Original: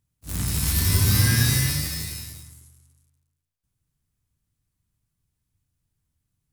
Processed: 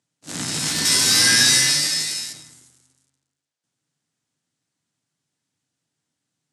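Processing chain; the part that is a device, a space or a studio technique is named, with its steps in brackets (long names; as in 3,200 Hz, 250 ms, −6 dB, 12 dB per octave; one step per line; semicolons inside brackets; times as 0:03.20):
0:00.85–0:02.33: spectral tilt +2 dB per octave
television speaker (loudspeaker in its box 190–8,200 Hz, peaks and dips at 200 Hz −9 dB, 390 Hz −4 dB, 1,100 Hz −5 dB, 2,400 Hz −3 dB)
level +8 dB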